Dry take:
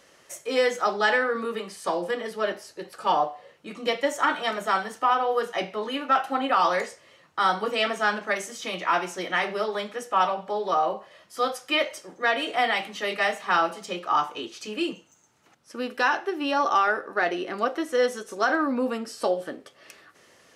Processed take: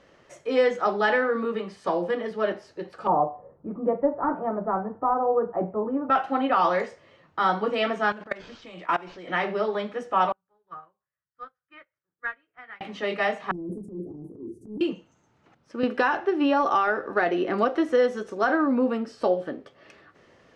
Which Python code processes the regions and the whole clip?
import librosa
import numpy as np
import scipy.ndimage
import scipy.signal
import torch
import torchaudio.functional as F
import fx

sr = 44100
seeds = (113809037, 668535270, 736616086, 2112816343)

y = fx.chain(x, sr, fx.lowpass(hz=1100.0, slope=24),
    fx.low_shelf(hz=140.0, db=9.0), at=(3.07, 6.1))
y = fx.chain(y, sr, fx.high_shelf(hz=3400.0, db=8.0),
    fx.level_steps(step_db=21),
    fx.resample_linear(factor=4), at=(8.12, 9.28))
y = fx.chain(y, sr, fx.curve_eq(hz=(140.0, 220.0, 350.0, 680.0, 1500.0, 3400.0), db=(0, -18, -15, -20, 0, -18)),
    fx.upward_expand(threshold_db=-47.0, expansion=2.5), at=(10.32, 12.81))
y = fx.chain(y, sr, fx.cheby1_bandstop(low_hz=380.0, high_hz=9600.0, order=4),
    fx.transient(attack_db=-10, sustain_db=10), at=(13.51, 14.81))
y = fx.chain(y, sr, fx.high_shelf(hz=11000.0, db=5.5),
    fx.band_squash(depth_pct=70), at=(15.83, 18.3))
y = scipy.signal.sosfilt(scipy.signal.bessel(2, 4100.0, 'lowpass', norm='mag', fs=sr, output='sos'), y)
y = fx.tilt_eq(y, sr, slope=-2.0)